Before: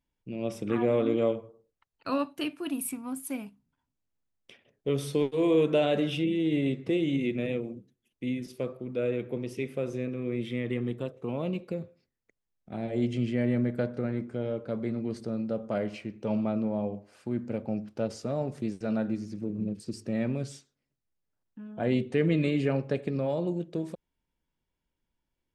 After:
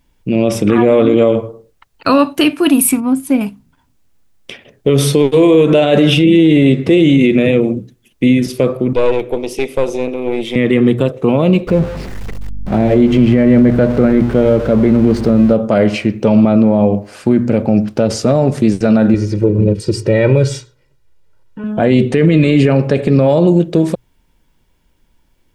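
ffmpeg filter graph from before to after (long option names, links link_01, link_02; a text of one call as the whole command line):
ffmpeg -i in.wav -filter_complex "[0:a]asettb=1/sr,asplit=3[link_01][link_02][link_03];[link_01]atrim=end=3.004[link_04];[link_02]atrim=start=3:end=3.41,asetpts=PTS-STARTPTS,afade=type=in:duration=0.004:curve=qsin,afade=type=out:start_time=0.406:duration=0.004:curve=qsin,lowpass=frequency=1900:poles=1,equalizer=frequency=1300:width=0.61:gain=-5.5[link_05];[link_03]atrim=start=3.406[link_06];[link_04][link_05]acrossfade=duration=0.004:curve1=hsin:curve2=qsin[link_07];[link_07][link_06]acrossfade=duration=0.004:curve1=qsin:curve2=hsin,asettb=1/sr,asplit=3[link_08][link_09][link_10];[link_08]atrim=end=8.934[link_11];[link_09]atrim=start=8.93:end=10.56,asetpts=PTS-STARTPTS,afade=type=in:duration=0.004:curve=qsin,afade=type=out:start_time=1.626:duration=0.004:curve=qsin,highpass=420,equalizer=frequency=1600:width=2:gain=-13,aeval=exprs='(tanh(28.2*val(0)+0.55)-tanh(0.55))/28.2':channel_layout=same[link_12];[link_10]atrim=start=10.556[link_13];[link_11][link_12]acrossfade=duration=0.004:curve1=hsin:curve2=qsin[link_14];[link_14][link_13]acrossfade=duration=0.004:curve1=qsin:curve2=hsin,asettb=1/sr,asplit=3[link_15][link_16][link_17];[link_15]atrim=end=11.674[link_18];[link_16]atrim=start=11.67:end=15.53,asetpts=PTS-STARTPTS,afade=type=in:duration=0.004:curve=qsin,afade=type=out:start_time=3.856:duration=0.004:curve=qsin,aeval=exprs='val(0)+0.5*0.00708*sgn(val(0))':channel_layout=same,lowpass=frequency=2000:poles=1,aeval=exprs='val(0)+0.00251*(sin(2*PI*50*n/s)+sin(2*PI*2*50*n/s)/2+sin(2*PI*3*50*n/s)/3+sin(2*PI*4*50*n/s)/4+sin(2*PI*5*50*n/s)/5)':channel_layout=same[link_19];[link_17]atrim=start=15.526[link_20];[link_18][link_19]acrossfade=duration=0.004:curve1=hsin:curve2=qsin[link_21];[link_21][link_20]acrossfade=duration=0.004:curve1=qsin:curve2=hsin,asettb=1/sr,asplit=3[link_22][link_23][link_24];[link_22]atrim=end=19.144[link_25];[link_23]atrim=start=19.14:end=21.64,asetpts=PTS-STARTPTS,afade=type=in:duration=0.004:curve=qsin,afade=type=out:start_time=2.496:duration=0.004:curve=qsin,aemphasis=mode=reproduction:type=cd,aecho=1:1:2.1:0.82,atrim=end_sample=110250[link_26];[link_24]atrim=start=21.636[link_27];[link_25][link_26]acrossfade=duration=0.004:curve1=hsin:curve2=qsin[link_28];[link_28][link_27]acrossfade=duration=0.004:curve1=qsin:curve2=hsin,lowshelf=frequency=61:gain=7,bandreject=frequency=60:width_type=h:width=6,bandreject=frequency=120:width_type=h:width=6,alimiter=level_in=23.5dB:limit=-1dB:release=50:level=0:latency=1,volume=-1dB" out.wav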